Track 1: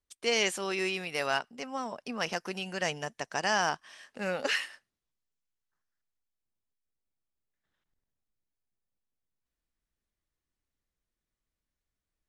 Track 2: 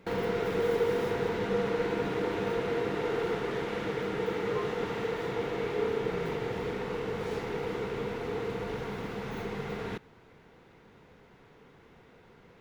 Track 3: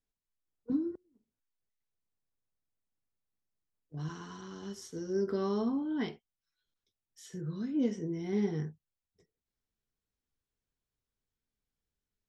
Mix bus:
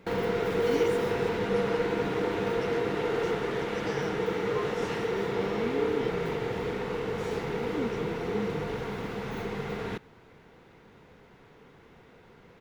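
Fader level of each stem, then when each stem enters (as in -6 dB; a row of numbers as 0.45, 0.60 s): -14.5, +2.0, -4.0 dB; 0.40, 0.00, 0.00 s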